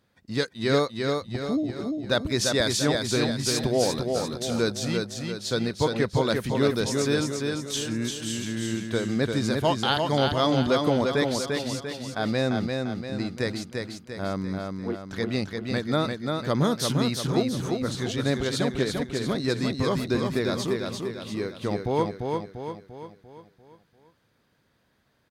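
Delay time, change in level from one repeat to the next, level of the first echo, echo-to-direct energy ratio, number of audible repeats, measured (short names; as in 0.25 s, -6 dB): 0.345 s, -6.0 dB, -4.0 dB, -3.0 dB, 6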